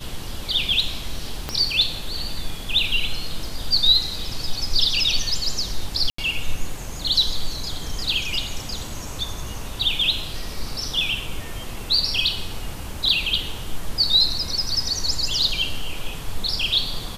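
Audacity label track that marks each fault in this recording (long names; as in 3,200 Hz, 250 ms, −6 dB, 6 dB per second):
1.490000	1.490000	click −11 dBFS
6.100000	6.180000	drop-out 84 ms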